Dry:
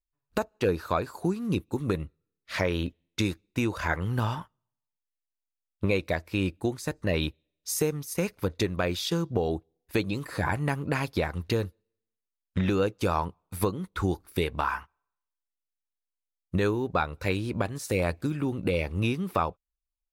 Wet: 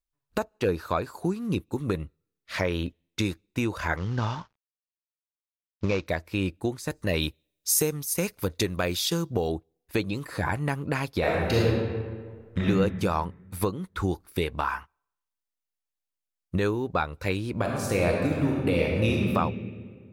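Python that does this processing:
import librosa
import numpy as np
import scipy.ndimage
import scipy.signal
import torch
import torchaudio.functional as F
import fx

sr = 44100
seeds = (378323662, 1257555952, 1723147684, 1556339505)

y = fx.cvsd(x, sr, bps=32000, at=(3.97, 6.07))
y = fx.high_shelf(y, sr, hz=5100.0, db=10.5, at=(6.9, 9.52))
y = fx.reverb_throw(y, sr, start_s=11.19, length_s=1.43, rt60_s=1.7, drr_db=-6.0)
y = fx.reverb_throw(y, sr, start_s=17.51, length_s=1.73, rt60_s=2.1, drr_db=-1.5)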